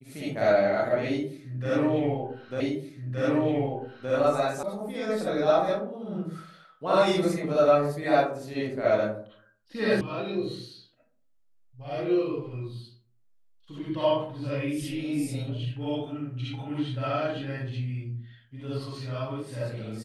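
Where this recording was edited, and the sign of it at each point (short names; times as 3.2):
2.6 repeat of the last 1.52 s
4.63 sound cut off
10.01 sound cut off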